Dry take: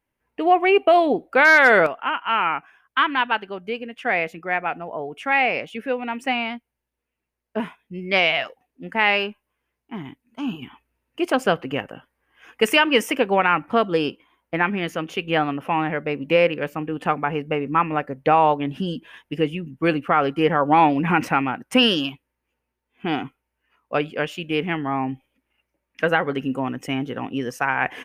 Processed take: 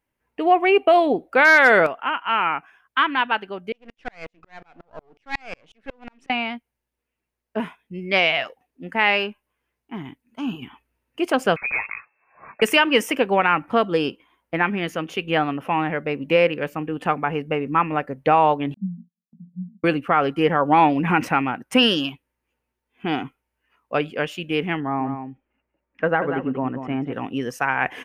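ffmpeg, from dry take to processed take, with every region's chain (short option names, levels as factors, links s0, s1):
-filter_complex "[0:a]asettb=1/sr,asplit=3[s0][s1][s2];[s0]atrim=end=3.724[s3];[s1]atrim=start=3.72:end=6.3,asetpts=PTS-STARTPTS,afade=t=in:d=0.004:c=qsin,afade=t=out:st=2.576:d=0.004:c=qsin,aeval=exprs='if(lt(val(0),0),0.251*val(0),val(0))':c=same,lowpass=6100,aeval=exprs='val(0)*pow(10,-39*if(lt(mod(-5.5*n/s,1),2*abs(-5.5)/1000),1-mod(-5.5*n/s,1)/(2*abs(-5.5)/1000),(mod(-5.5*n/s,1)-2*abs(-5.5)/1000)/(1-2*abs(-5.5)/1000))/20)':c=same[s4];[s2]atrim=start=6.296[s5];[s3][s4]acrossfade=d=0.004:c1=hsin:c2=qsin[s6];[s6][s5]acrossfade=d=0.004:c1=qsin:c2=hsin,asettb=1/sr,asplit=3[s7][s8][s9];[s7]atrim=end=11.564[s10];[s8]atrim=start=11.56:end=12.62,asetpts=PTS-STARTPTS,afade=t=in:d=0.004:c=qsin,afade=t=out:st=1.056:d=0.004:c=qsin,acontrast=49,asoftclip=type=hard:threshold=0.1,lowpass=f=2300:t=q:w=0.5098,lowpass=f=2300:t=q:w=0.6013,lowpass=f=2300:t=q:w=0.9,lowpass=f=2300:t=q:w=2.563,afreqshift=-2700[s11];[s9]atrim=start=12.616[s12];[s10][s11]acrossfade=d=0.004:c1=hsin:c2=qsin[s13];[s13][s12]acrossfade=d=0.004:c1=qsin:c2=hsin,asettb=1/sr,asplit=3[s14][s15][s16];[s14]atrim=end=18.744[s17];[s15]atrim=start=18.74:end=19.84,asetpts=PTS-STARTPTS,afade=t=in:d=0.004:c=qsin,afade=t=out:st=1.096:d=0.004:c=qsin,asuperpass=centerf=200:order=12:qfactor=3.4,agate=range=0.178:threshold=0.00126:ratio=16:release=100:detection=peak[s18];[s16]atrim=start=19.836[s19];[s17][s18]acrossfade=d=0.004:c1=hsin:c2=qsin[s20];[s20][s19]acrossfade=d=0.004:c1=qsin:c2=hsin,asettb=1/sr,asplit=3[s21][s22][s23];[s21]atrim=end=24.804[s24];[s22]atrim=start=24.8:end=27.13,asetpts=PTS-STARTPTS,afade=t=in:d=0.004:c=qsin,afade=t=out:st=2.326:d=0.004:c=qsin,lowpass=1600,aecho=1:1:188:0.376,atrim=end_sample=102753[s25];[s23]atrim=start=27.126[s26];[s24][s25]acrossfade=d=0.004:c1=hsin:c2=qsin[s27];[s27][s26]acrossfade=d=0.004:c1=qsin:c2=hsin"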